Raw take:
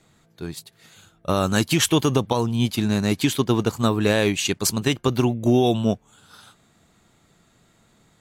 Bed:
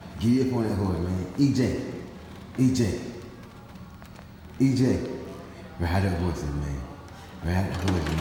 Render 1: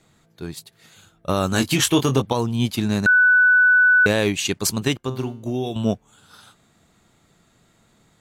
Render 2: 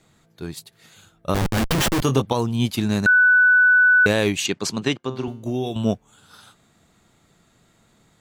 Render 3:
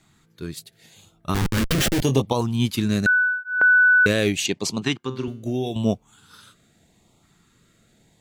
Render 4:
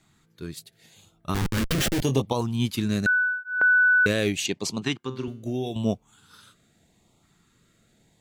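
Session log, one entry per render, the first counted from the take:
1.51–2.22 doubler 22 ms -6.5 dB; 3.06–4.06 bleep 1490 Hz -11 dBFS; 4.97–5.76 resonator 130 Hz, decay 0.47 s, mix 70%
1.34–2.02 Schmitt trigger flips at -20.5 dBFS; 4.46–5.28 BPF 150–5600 Hz
LFO notch saw up 0.83 Hz 480–1800 Hz
gain -3.5 dB

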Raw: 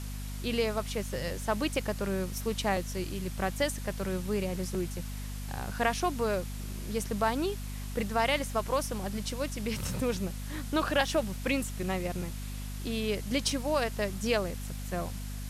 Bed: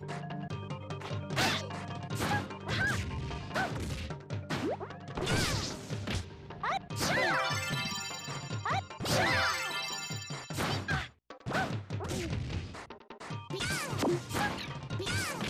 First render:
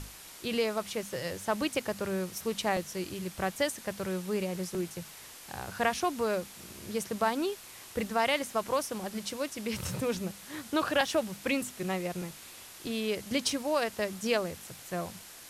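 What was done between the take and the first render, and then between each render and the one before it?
notches 50/100/150/200/250 Hz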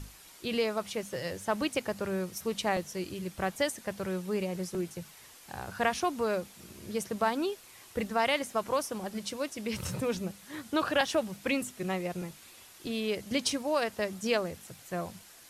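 denoiser 6 dB, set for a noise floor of -49 dBFS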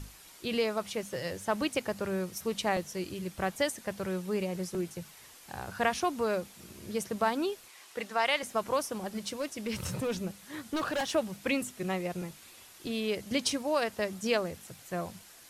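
7.68–8.43 weighting filter A; 9.15–11.15 overloaded stage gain 27.5 dB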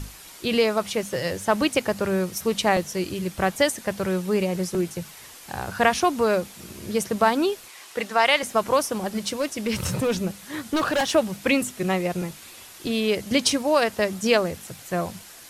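gain +9 dB

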